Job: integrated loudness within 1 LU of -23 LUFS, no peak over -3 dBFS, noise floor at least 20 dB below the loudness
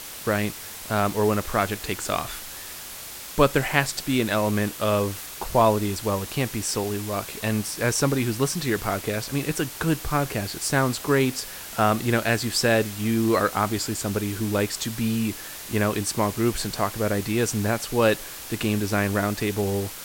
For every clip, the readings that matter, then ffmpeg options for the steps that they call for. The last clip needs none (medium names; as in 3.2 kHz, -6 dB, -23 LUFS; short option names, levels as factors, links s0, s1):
noise floor -38 dBFS; noise floor target -45 dBFS; loudness -24.5 LUFS; peak level -2.5 dBFS; loudness target -23.0 LUFS
-> -af "afftdn=nr=7:nf=-38"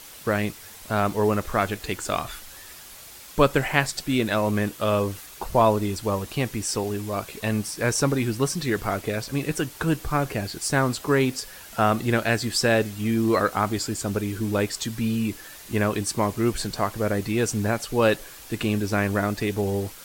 noise floor -44 dBFS; noise floor target -45 dBFS
-> -af "afftdn=nr=6:nf=-44"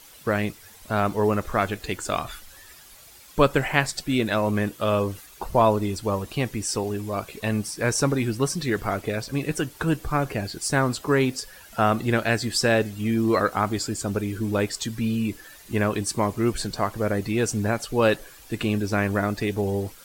noise floor -48 dBFS; loudness -25.0 LUFS; peak level -3.0 dBFS; loudness target -23.0 LUFS
-> -af "volume=1.26,alimiter=limit=0.708:level=0:latency=1"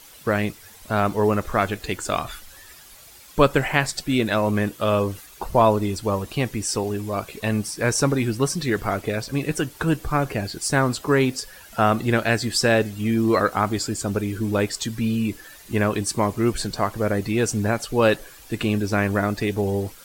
loudness -23.0 LUFS; peak level -3.0 dBFS; noise floor -46 dBFS